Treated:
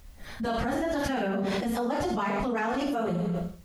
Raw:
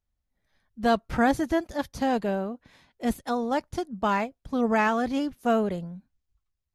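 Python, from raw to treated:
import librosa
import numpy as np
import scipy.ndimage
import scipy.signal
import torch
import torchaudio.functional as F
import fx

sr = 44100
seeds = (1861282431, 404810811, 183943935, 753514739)

y = fx.rev_schroeder(x, sr, rt60_s=0.9, comb_ms=31, drr_db=3.0)
y = fx.spec_box(y, sr, start_s=1.91, length_s=0.61, low_hz=1300.0, high_hz=3300.0, gain_db=6)
y = fx.stretch_vocoder_free(y, sr, factor=0.54)
y = fx.env_flatten(y, sr, amount_pct=100)
y = y * 10.0 ** (-7.5 / 20.0)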